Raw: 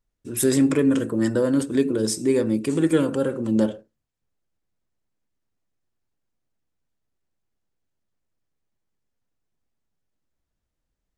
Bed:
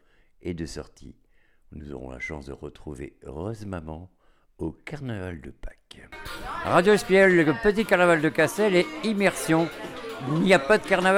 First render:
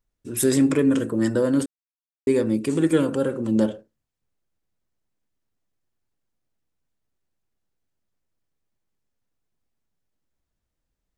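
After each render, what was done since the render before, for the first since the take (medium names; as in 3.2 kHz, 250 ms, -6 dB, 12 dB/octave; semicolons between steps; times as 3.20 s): 1.66–2.27 s: mute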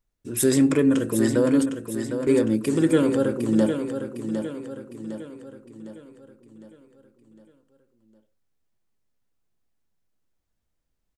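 feedback delay 757 ms, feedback 48%, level -8 dB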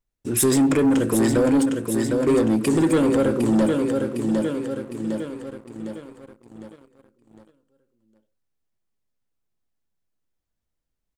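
compression 1.5:1, threshold -24 dBFS, peak gain reduction 4 dB; waveshaping leveller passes 2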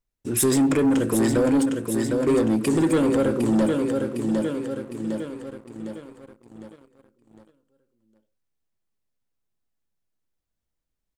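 trim -1.5 dB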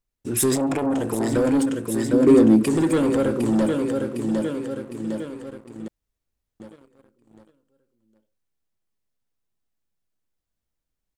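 0.55–1.32 s: transformer saturation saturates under 460 Hz; 2.13–2.63 s: peaking EQ 270 Hz +8.5 dB 1.5 oct; 5.88–6.60 s: room tone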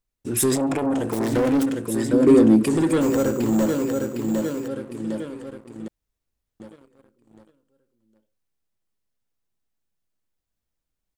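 1.09–1.82 s: self-modulated delay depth 0.16 ms; 3.01–4.68 s: careless resampling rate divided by 6×, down none, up hold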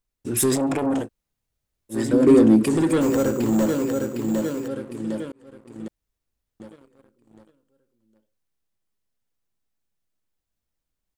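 1.04–1.94 s: room tone, crossfade 0.10 s; 5.32–5.81 s: fade in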